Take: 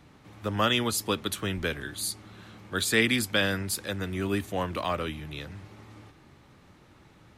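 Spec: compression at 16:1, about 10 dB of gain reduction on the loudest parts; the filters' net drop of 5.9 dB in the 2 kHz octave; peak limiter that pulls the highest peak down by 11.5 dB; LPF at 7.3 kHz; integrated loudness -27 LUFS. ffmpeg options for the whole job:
-af "lowpass=7300,equalizer=f=2000:t=o:g=-7.5,acompressor=threshold=0.0282:ratio=16,volume=5.96,alimiter=limit=0.141:level=0:latency=1"

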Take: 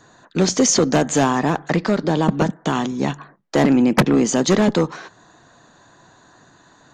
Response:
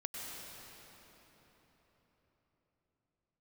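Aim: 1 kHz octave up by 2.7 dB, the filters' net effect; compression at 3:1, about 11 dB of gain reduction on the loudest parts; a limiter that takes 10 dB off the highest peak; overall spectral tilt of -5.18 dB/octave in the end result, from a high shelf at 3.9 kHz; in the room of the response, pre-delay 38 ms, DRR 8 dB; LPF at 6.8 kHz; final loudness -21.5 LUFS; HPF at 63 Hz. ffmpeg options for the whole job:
-filter_complex "[0:a]highpass=63,lowpass=6800,equalizer=f=1000:t=o:g=4,highshelf=f=3900:g=-8,acompressor=threshold=0.0501:ratio=3,alimiter=limit=0.0841:level=0:latency=1,asplit=2[s0][s1];[1:a]atrim=start_sample=2205,adelay=38[s2];[s1][s2]afir=irnorm=-1:irlink=0,volume=0.376[s3];[s0][s3]amix=inputs=2:normalize=0,volume=2.99"

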